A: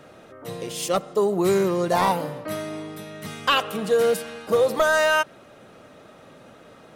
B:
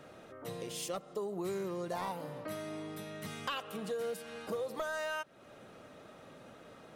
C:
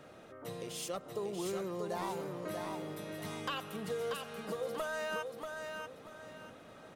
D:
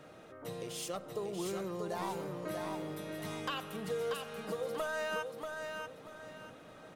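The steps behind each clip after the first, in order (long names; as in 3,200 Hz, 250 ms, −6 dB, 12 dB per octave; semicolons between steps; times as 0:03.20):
downward compressor 3 to 1, threshold −33 dBFS, peak gain reduction 13 dB; level −6 dB
repeating echo 636 ms, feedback 32%, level −5 dB; level −1 dB
rectangular room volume 2,200 cubic metres, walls furnished, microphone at 0.53 metres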